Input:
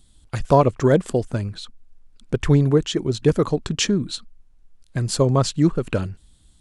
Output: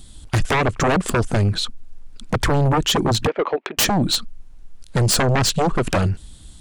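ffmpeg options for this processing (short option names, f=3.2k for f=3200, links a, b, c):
-filter_complex "[0:a]acompressor=threshold=-18dB:ratio=10,asplit=3[a][b][c];[a]afade=t=out:st=3.26:d=0.02[d];[b]highpass=f=430:w=0.5412,highpass=f=430:w=1.3066,equalizer=f=470:t=q:w=4:g=-4,equalizer=f=1.1k:t=q:w=4:g=-4,equalizer=f=1.5k:t=q:w=4:g=-4,equalizer=f=2.2k:t=q:w=4:g=5,lowpass=f=2.6k:w=0.5412,lowpass=f=2.6k:w=1.3066,afade=t=in:st=3.26:d=0.02,afade=t=out:st=3.77:d=0.02[e];[c]afade=t=in:st=3.77:d=0.02[f];[d][e][f]amix=inputs=3:normalize=0,aeval=exprs='0.376*sin(PI/2*5.01*val(0)/0.376)':c=same,volume=-5dB"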